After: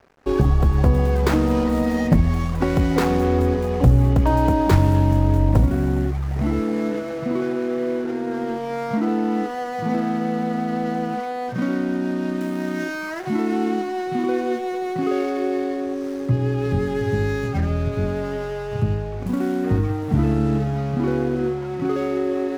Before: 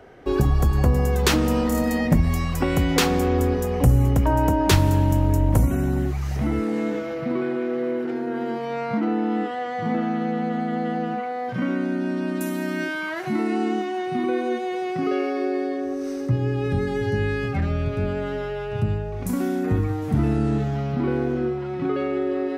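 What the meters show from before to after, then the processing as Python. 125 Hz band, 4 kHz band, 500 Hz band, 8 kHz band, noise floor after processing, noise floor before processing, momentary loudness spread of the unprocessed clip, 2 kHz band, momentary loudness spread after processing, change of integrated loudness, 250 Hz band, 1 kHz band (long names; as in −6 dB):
+2.0 dB, −5.5 dB, +1.5 dB, can't be measured, −28 dBFS, −29 dBFS, 7 LU, −1.0 dB, 8 LU, +1.5 dB, +2.0 dB, +1.5 dB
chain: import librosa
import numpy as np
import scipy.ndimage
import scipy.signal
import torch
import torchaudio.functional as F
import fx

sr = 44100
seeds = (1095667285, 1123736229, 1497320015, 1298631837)

y = scipy.signal.medfilt(x, 15)
y = np.sign(y) * np.maximum(np.abs(y) - 10.0 ** (-45.0 / 20.0), 0.0)
y = F.gain(torch.from_numpy(y), 2.5).numpy()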